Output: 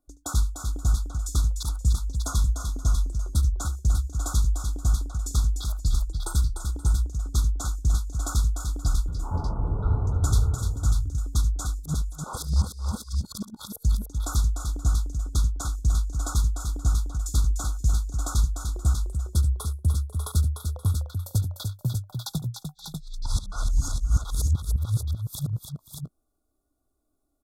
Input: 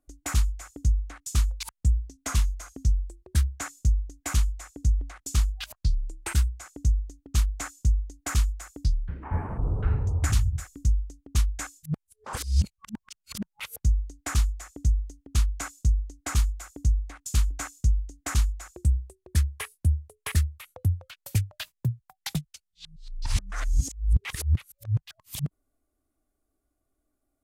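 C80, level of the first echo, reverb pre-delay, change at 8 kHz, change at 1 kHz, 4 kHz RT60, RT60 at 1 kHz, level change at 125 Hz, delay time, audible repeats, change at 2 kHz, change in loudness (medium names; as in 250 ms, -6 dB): no reverb, -16.0 dB, no reverb, +2.0 dB, +2.0 dB, no reverb, no reverb, +2.0 dB, 73 ms, 4, -8.0 dB, +1.5 dB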